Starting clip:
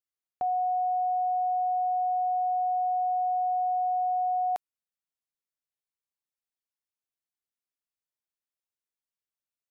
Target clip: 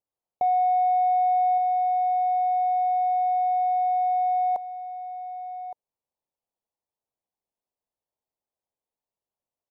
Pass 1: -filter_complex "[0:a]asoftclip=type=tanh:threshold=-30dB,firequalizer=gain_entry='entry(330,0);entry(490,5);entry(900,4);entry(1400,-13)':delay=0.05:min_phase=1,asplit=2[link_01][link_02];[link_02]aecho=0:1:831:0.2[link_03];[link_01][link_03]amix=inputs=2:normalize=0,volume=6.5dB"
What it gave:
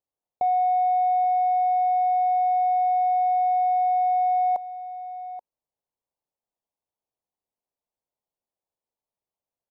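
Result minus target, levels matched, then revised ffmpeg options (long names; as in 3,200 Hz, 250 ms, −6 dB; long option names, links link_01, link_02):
echo 335 ms early
-filter_complex "[0:a]asoftclip=type=tanh:threshold=-30dB,firequalizer=gain_entry='entry(330,0);entry(490,5);entry(900,4);entry(1400,-13)':delay=0.05:min_phase=1,asplit=2[link_01][link_02];[link_02]aecho=0:1:1166:0.2[link_03];[link_01][link_03]amix=inputs=2:normalize=0,volume=6.5dB"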